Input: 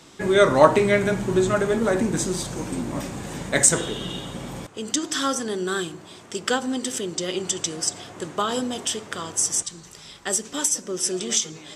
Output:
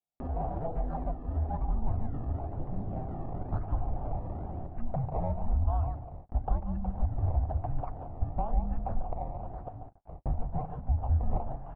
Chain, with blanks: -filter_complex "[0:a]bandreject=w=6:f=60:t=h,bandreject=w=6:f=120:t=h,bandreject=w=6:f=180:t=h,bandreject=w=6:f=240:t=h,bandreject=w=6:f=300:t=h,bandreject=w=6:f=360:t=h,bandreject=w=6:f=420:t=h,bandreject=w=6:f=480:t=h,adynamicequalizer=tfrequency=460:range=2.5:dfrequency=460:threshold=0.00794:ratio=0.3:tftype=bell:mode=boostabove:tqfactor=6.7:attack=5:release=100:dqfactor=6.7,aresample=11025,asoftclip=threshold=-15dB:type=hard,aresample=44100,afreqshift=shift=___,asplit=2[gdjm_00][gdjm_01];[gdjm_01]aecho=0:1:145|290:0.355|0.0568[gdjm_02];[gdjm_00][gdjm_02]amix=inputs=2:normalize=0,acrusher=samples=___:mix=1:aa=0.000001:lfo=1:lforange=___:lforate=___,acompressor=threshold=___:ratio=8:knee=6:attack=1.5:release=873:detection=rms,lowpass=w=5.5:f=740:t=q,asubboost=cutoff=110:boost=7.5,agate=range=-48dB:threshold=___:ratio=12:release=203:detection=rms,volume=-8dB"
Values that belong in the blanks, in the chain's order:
-450, 20, 20, 1, -23dB, -33dB